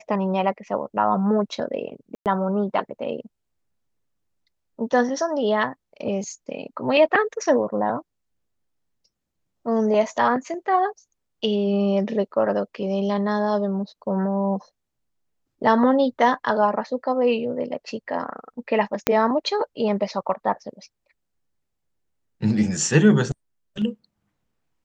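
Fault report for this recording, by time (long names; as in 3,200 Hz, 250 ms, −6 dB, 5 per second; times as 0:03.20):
0:02.15–0:02.26: drop-out 108 ms
0:19.07: click −3 dBFS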